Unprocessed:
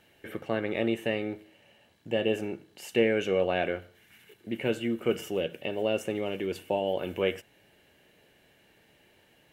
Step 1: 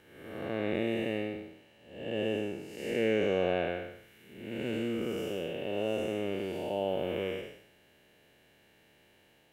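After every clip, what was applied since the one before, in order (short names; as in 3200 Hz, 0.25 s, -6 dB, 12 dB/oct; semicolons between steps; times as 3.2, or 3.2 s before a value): time blur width 0.304 s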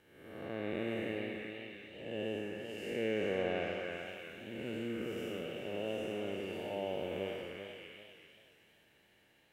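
delay with a stepping band-pass 0.285 s, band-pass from 1600 Hz, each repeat 0.7 oct, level -0.5 dB; warbling echo 0.387 s, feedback 30%, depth 89 cents, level -8 dB; gain -6.5 dB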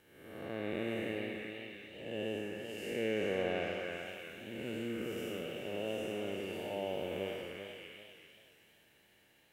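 high shelf 6000 Hz +7 dB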